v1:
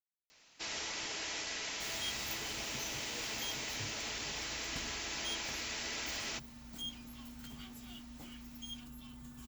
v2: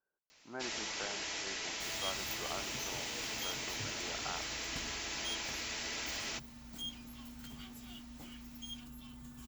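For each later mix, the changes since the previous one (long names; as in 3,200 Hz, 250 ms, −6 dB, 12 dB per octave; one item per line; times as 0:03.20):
speech: unmuted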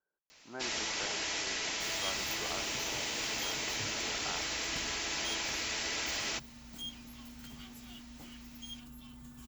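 first sound +4.5 dB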